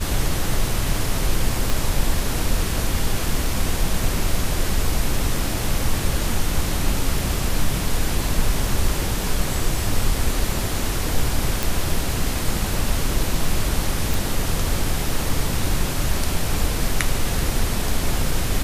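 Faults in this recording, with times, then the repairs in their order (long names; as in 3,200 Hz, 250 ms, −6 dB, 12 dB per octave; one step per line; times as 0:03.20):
0:01.70: click
0:11.63: click
0:14.14: click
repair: click removal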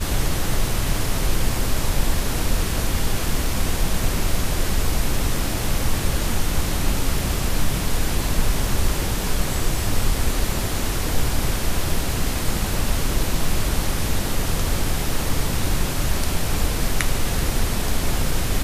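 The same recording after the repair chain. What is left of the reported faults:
0:01.70: click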